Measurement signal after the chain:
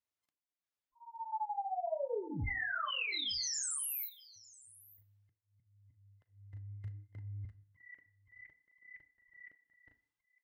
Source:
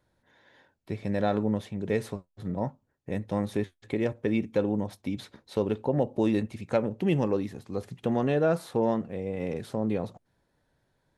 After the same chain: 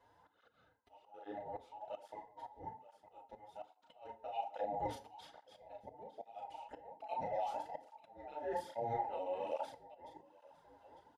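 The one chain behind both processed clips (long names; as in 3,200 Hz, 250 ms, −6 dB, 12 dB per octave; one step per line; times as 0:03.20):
frequency inversion band by band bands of 1,000 Hz
low-pass filter 3,400 Hz 6 dB per octave
dynamic equaliser 1,100 Hz, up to −3 dB, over −34 dBFS, Q 0.84
reversed playback
downward compressor 16 to 1, threshold −39 dBFS
reversed playback
double-tracking delay 36 ms −5 dB
on a send: single-tap delay 907 ms −21.5 dB
on the sum: volume swells 620 ms
feedback delay network reverb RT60 0.53 s, low-frequency decay 1×, high-frequency decay 0.75×, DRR 10 dB
through-zero flanger with one copy inverted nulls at 1.2 Hz, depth 6.9 ms
level +5 dB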